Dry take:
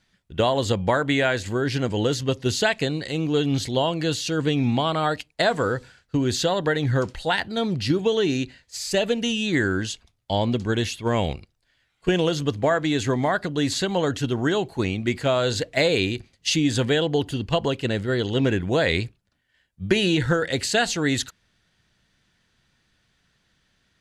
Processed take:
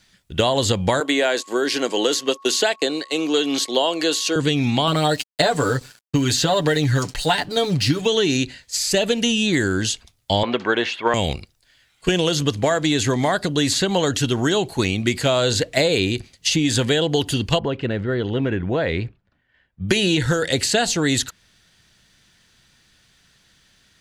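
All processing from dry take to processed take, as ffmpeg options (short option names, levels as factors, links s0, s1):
-filter_complex "[0:a]asettb=1/sr,asplit=3[s0][s1][s2];[s0]atrim=end=1.004[s3];[s1]atrim=start=1:end=4.36,asetpts=PTS-STARTPTS,afade=t=in:d=0.004:c=qsin,afade=t=out:st=3.356:d=0.004:c=qsin,agate=range=0.0501:threshold=0.0282:ratio=16:release=100:detection=peak,highpass=f=290:w=0.5412,highpass=f=290:w=1.3066,aeval=exprs='val(0)+0.00316*sin(2*PI*1100*n/s)':c=same[s4];[s2]atrim=start=4.356[s5];[s3][s4]acrossfade=d=0.004:c1=hsin:c2=qsin[s6];[s6][s5]acrossfade=d=0.004:c1=qsin:c2=hsin,asettb=1/sr,asplit=3[s7][s8][s9];[s7]atrim=end=4.874[s10];[s8]atrim=start=4.87:end=8.06,asetpts=PTS-STARTPTS,afade=t=in:d=0.004:c=qsin,afade=t=out:st=3.186:d=0.004:c=qsin,bandreject=f=3400:w=17,aecho=1:1:6.9:0.76,atrim=end_sample=140679,aeval=exprs='sgn(val(0))*max(abs(val(0))-0.00316,0)':c=same[s11];[s9]atrim=start=8.056[s12];[s10][s11]acrossfade=d=0.004:c1=hsin:c2=qsin[s13];[s13][s12]acrossfade=d=0.004:c1=qsin:c2=hsin,asettb=1/sr,asplit=3[s14][s15][s16];[s14]atrim=end=10.434[s17];[s15]atrim=start=10.43:end=11.14,asetpts=PTS-STARTPTS,afade=t=in:d=0.004:c=qsin,afade=t=out:st=0.706:d=0.004:c=qsin,highpass=340,lowpass=2400,equalizer=f=1400:t=o:w=2.2:g=11[s18];[s16]atrim=start=11.136[s19];[s17][s18]acrossfade=d=0.004:c1=hsin:c2=qsin[s20];[s20][s19]acrossfade=d=0.004:c1=qsin:c2=hsin,asettb=1/sr,asplit=3[s21][s22][s23];[s21]atrim=end=17.594[s24];[s22]atrim=start=17.59:end=19.89,asetpts=PTS-STARTPTS,afade=t=in:d=0.004:c=qsin,afade=t=out:st=2.296:d=0.004:c=qsin,lowpass=1800,acompressor=threshold=0.0282:ratio=1.5:attack=3.2:release=140:knee=1:detection=peak[s25];[s23]atrim=start=19.886[s26];[s24][s25]acrossfade=d=0.004:c1=hsin:c2=qsin[s27];[s27][s26]acrossfade=d=0.004:c1=qsin:c2=hsin,acrossover=split=1100|2600[s28][s29][s30];[s28]acompressor=threshold=0.0708:ratio=4[s31];[s29]acompressor=threshold=0.0112:ratio=4[s32];[s30]acompressor=threshold=0.0178:ratio=4[s33];[s31][s32][s33]amix=inputs=3:normalize=0,highshelf=f=3300:g=9.5,volume=2"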